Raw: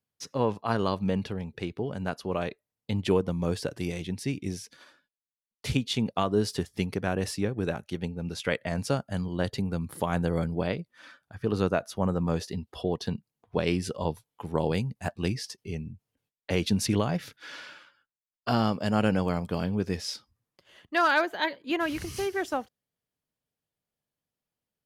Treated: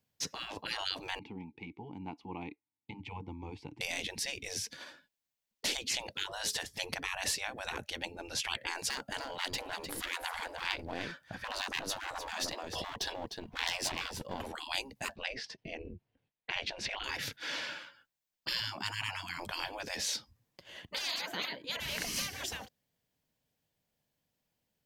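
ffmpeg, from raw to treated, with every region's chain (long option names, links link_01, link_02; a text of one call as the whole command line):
ffmpeg -i in.wav -filter_complex "[0:a]asettb=1/sr,asplit=3[link_01][link_02][link_03];[link_01]atrim=end=1.194[link_04];[link_02]atrim=start=1.19:end=3.81,asetpts=PTS-STARTPTS,afade=type=in:duration=0.004:curve=qsin,afade=type=out:start_time=2.616:duration=0.004:curve=qsin,asubboost=boost=10:cutoff=96,asplit=3[link_05][link_06][link_07];[link_05]bandpass=frequency=300:width_type=q:width=8,volume=0dB[link_08];[link_06]bandpass=frequency=870:width_type=q:width=8,volume=-6dB[link_09];[link_07]bandpass=frequency=2240:width_type=q:width=8,volume=-9dB[link_10];[link_08][link_09][link_10]amix=inputs=3:normalize=0[link_11];[link_03]atrim=start=3.806[link_12];[link_04][link_11]acrossfade=duration=0.004:curve1=hsin:curve2=qsin[link_13];[link_13][link_12]acrossfade=duration=0.004:curve1=qsin:curve2=hsin,asettb=1/sr,asplit=3[link_14][link_15][link_16];[link_14]atrim=end=8.884[link_17];[link_15]atrim=start=8.88:end=14.48,asetpts=PTS-STARTPTS,afade=type=in:duration=0.004:curve=qsin,afade=type=out:start_time=5.596:duration=0.004:curve=qsin,aeval=exprs='clip(val(0),-1,0.0178)':channel_layout=same,aecho=1:1:303:0.282,atrim=end_sample=246960[link_18];[link_16]atrim=start=14.476[link_19];[link_17][link_18]acrossfade=duration=0.004:curve1=hsin:curve2=qsin[link_20];[link_20][link_19]acrossfade=duration=0.004:curve1=qsin:curve2=hsin,asettb=1/sr,asplit=3[link_21][link_22][link_23];[link_21]atrim=end=15.164[link_24];[link_22]atrim=start=15.16:end=17.04,asetpts=PTS-STARTPTS,afade=type=in:duration=0.004:curve=qsin,afade=type=out:start_time=1.876:duration=0.004:curve=qsin,lowpass=3000,tremolo=f=260:d=0.621[link_25];[link_23]atrim=start=17.036[link_26];[link_24][link_25]acrossfade=duration=0.004:curve1=hsin:curve2=qsin[link_27];[link_27][link_26]acrossfade=duration=0.004:curve1=qsin:curve2=hsin,asettb=1/sr,asplit=3[link_28][link_29][link_30];[link_28]atrim=end=18.604[link_31];[link_29]atrim=start=18.6:end=19.39,asetpts=PTS-STARTPTS,afade=type=in:duration=0.004:curve=qsin,afade=type=out:start_time=0.786:duration=0.004:curve=qsin,highpass=frequency=470:width_type=q:width=4.9,tiltshelf=frequency=830:gain=3.5[link_32];[link_30]atrim=start=19.386[link_33];[link_31][link_32]acrossfade=duration=0.004:curve1=hsin:curve2=qsin[link_34];[link_34][link_33]acrossfade=duration=0.004:curve1=qsin:curve2=hsin,afftfilt=real='re*lt(hypot(re,im),0.0398)':imag='im*lt(hypot(re,im),0.0398)':win_size=1024:overlap=0.75,equalizer=frequency=400:width_type=o:width=0.33:gain=-4,equalizer=frequency=1250:width_type=o:width=0.33:gain=-7,equalizer=frequency=10000:width_type=o:width=0.33:gain=-6,volume=7dB" out.wav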